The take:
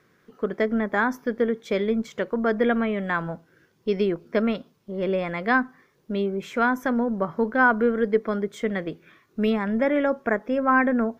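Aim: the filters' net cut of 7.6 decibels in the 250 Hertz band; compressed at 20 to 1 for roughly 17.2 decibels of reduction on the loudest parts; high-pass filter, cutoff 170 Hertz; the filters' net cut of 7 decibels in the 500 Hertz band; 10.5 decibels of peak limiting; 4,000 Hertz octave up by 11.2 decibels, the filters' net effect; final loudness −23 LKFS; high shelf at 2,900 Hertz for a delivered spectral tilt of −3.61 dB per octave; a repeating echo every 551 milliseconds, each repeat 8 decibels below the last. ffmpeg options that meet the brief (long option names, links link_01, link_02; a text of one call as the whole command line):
ffmpeg -i in.wav -af "highpass=170,equalizer=frequency=250:width_type=o:gain=-6,equalizer=frequency=500:width_type=o:gain=-7,highshelf=frequency=2900:gain=8.5,equalizer=frequency=4000:width_type=o:gain=8.5,acompressor=threshold=-31dB:ratio=20,alimiter=level_in=3dB:limit=-24dB:level=0:latency=1,volume=-3dB,aecho=1:1:551|1102|1653|2204|2755:0.398|0.159|0.0637|0.0255|0.0102,volume=15dB" out.wav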